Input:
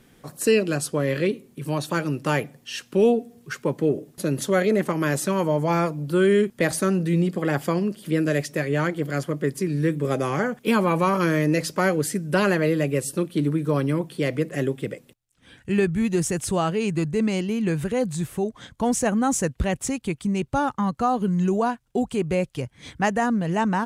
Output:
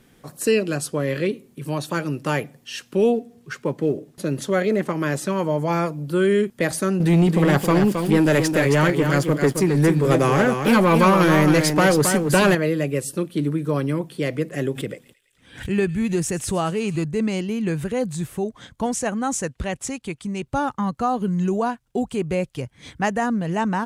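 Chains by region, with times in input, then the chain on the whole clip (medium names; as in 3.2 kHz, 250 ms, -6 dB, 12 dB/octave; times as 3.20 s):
3.14–5.50 s: companded quantiser 8-bit + treble shelf 9.5 kHz -9 dB
7.00–12.55 s: waveshaping leveller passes 2 + delay 269 ms -6.5 dB
14.64–17.04 s: feedback echo behind a high-pass 110 ms, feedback 71%, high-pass 2.5 kHz, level -16 dB + swell ahead of each attack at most 130 dB/s
18.86–20.46 s: low-pass 11 kHz + bass shelf 420 Hz -5 dB
whole clip: none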